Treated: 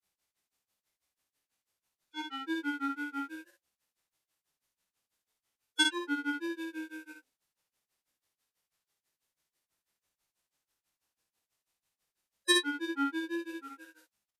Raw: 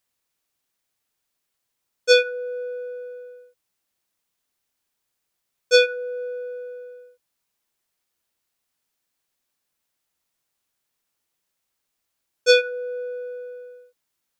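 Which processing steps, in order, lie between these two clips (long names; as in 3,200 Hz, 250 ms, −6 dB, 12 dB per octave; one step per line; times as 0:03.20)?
downward compressor 6 to 1, threshold −23 dBFS, peak gain reduction 11.5 dB
granular cloud 125 ms, grains 6.1 per second, pitch spread up and down by 3 semitones
on a send: ambience of single reflections 20 ms −8 dB, 54 ms −3 dB
on the sum: phase-vocoder pitch shift with formants kept −8 semitones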